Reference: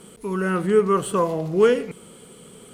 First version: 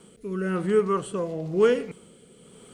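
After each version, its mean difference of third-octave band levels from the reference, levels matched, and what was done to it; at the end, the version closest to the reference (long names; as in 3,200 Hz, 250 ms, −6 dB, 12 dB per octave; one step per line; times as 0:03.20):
2.5 dB: low-pass filter 9,700 Hz 24 dB per octave
bit-depth reduction 12 bits, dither triangular
rotating-speaker cabinet horn 1 Hz
level −3 dB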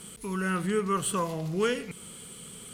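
6.5 dB: low-shelf EQ 410 Hz +5 dB
in parallel at −1.5 dB: downward compressor, threshold −28 dBFS, peak gain reduction 17.5 dB
on the sum: guitar amp tone stack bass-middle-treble 5-5-5
level +5.5 dB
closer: first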